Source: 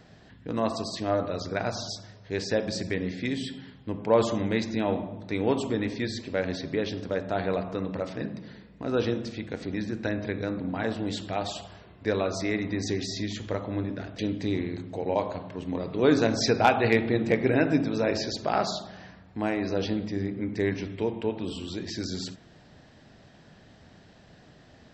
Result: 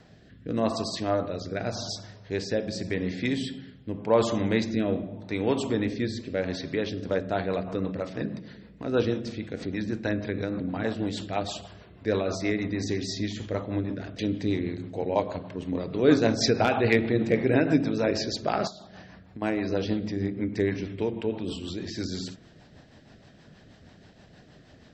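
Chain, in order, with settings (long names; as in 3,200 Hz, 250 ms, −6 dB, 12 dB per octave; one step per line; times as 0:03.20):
0:18.67–0:19.42: downward compressor 6 to 1, threshold −41 dBFS, peak gain reduction 12 dB
rotating-speaker cabinet horn 0.85 Hz, later 6.3 Hz, at 0:06.63
level +2.5 dB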